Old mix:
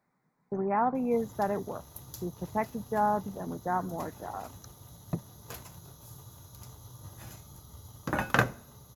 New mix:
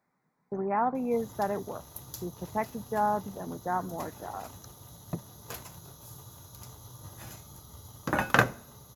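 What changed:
background +3.0 dB; master: add low shelf 170 Hz -4.5 dB

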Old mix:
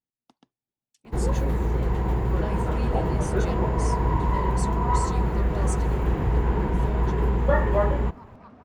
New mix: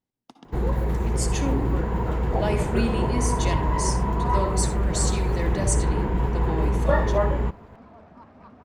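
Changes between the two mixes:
speech +9.0 dB; first sound: entry -0.60 s; reverb: on, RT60 0.75 s

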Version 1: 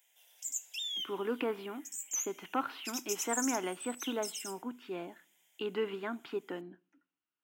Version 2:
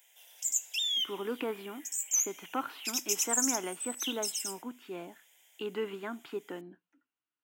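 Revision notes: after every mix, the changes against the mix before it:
background +8.0 dB; reverb: off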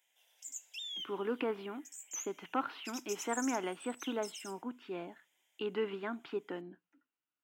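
background -10.0 dB; master: add high shelf 7900 Hz -10 dB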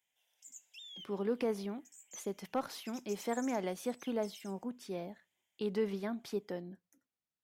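speech: remove speaker cabinet 160–3300 Hz, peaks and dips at 200 Hz -8 dB, 300 Hz +7 dB, 550 Hz -7 dB, 980 Hz +5 dB, 1400 Hz +9 dB, 2800 Hz +9 dB; background -8.0 dB

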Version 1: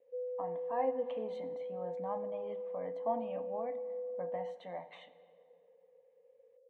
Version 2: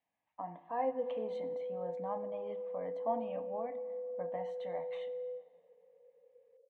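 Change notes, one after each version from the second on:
background: entry +0.85 s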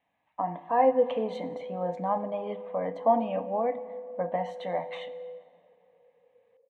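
speech +12.0 dB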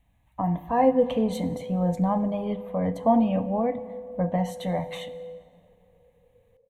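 master: remove BPF 410–2700 Hz

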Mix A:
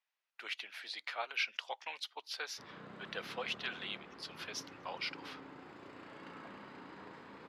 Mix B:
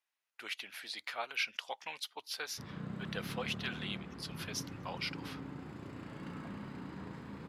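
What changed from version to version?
master: remove three-band isolator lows -17 dB, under 330 Hz, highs -12 dB, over 6200 Hz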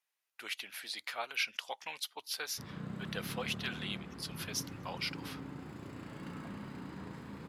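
master: add high shelf 7900 Hz +9 dB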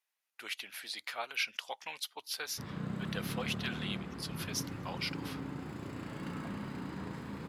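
background +4.0 dB

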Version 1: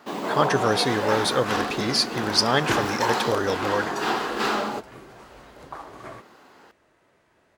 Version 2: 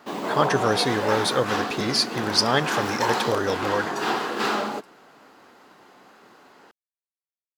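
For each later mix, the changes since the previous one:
second sound: muted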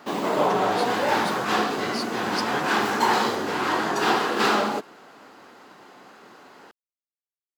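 speech -12.0 dB; background +3.5 dB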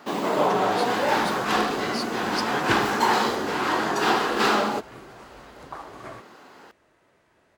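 second sound: unmuted

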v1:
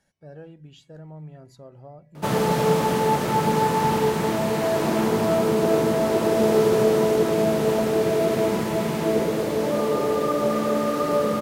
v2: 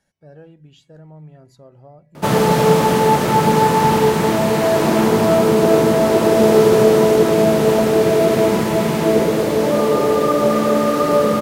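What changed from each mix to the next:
background +7.0 dB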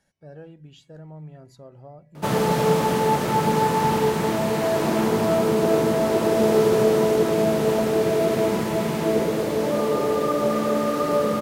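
background -6.5 dB

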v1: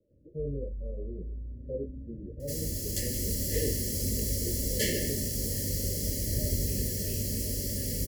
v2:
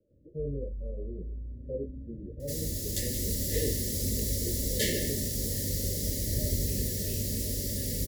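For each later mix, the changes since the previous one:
master: remove Butterworth band-stop 3700 Hz, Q 6.5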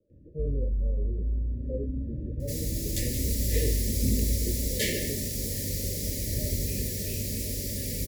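first sound +10.0 dB; master: add bell 2400 Hz +12.5 dB 0.21 oct

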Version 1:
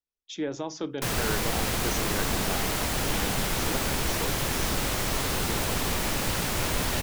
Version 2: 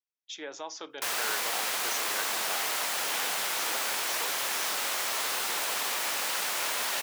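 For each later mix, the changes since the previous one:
master: add HPF 760 Hz 12 dB/oct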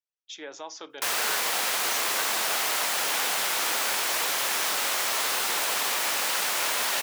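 background +4.0 dB

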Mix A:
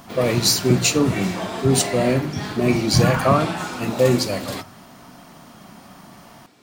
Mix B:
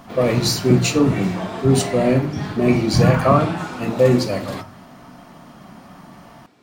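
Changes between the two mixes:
speech: send +6.5 dB; master: add high shelf 3600 Hz -9 dB

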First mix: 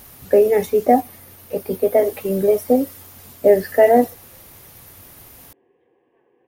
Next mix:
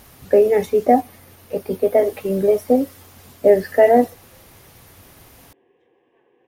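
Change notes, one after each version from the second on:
speech: add high shelf 11000 Hz -11.5 dB; background: remove air absorption 360 m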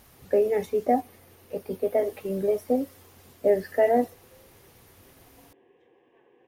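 speech -8.5 dB

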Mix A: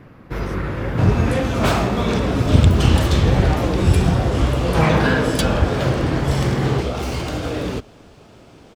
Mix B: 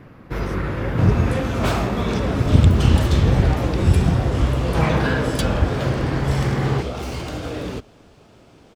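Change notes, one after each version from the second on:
second sound -4.0 dB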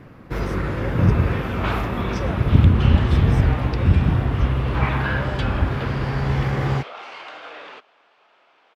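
second sound: add Butterworth band-pass 1600 Hz, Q 0.69

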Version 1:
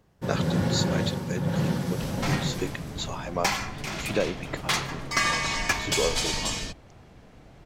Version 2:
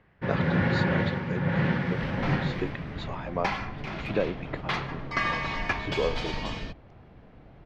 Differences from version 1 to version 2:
first sound: add bell 2000 Hz +14 dB 1.3 oct; master: add air absorption 320 m

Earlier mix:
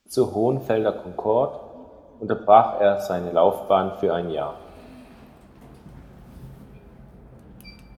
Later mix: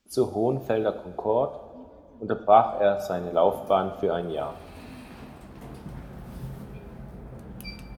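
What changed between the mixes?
speech -3.5 dB; second sound +5.0 dB

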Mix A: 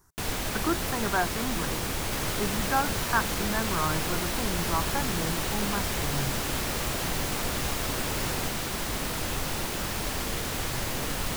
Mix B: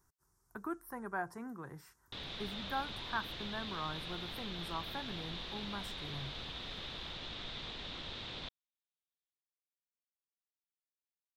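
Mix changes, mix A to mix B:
speech -11.5 dB; first sound: muted; second sound: add ladder low-pass 3900 Hz, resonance 75%

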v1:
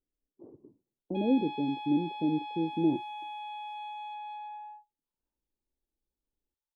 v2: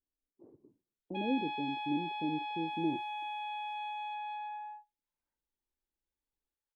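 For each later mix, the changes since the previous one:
speech -7.0 dB; master: add bell 1900 Hz +14 dB 0.52 oct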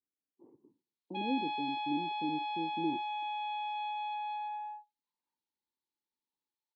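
master: add speaker cabinet 180–6000 Hz, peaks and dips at 430 Hz -3 dB, 630 Hz -10 dB, 930 Hz +8 dB, 1500 Hz -9 dB, 4200 Hz +9 dB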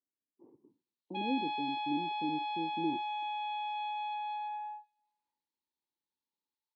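reverb: on, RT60 1.1 s

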